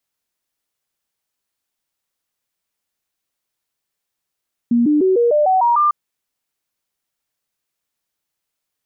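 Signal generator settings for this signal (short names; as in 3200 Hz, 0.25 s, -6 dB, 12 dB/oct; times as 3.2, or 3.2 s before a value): stepped sine 237 Hz up, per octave 3, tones 8, 0.15 s, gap 0.00 s -11 dBFS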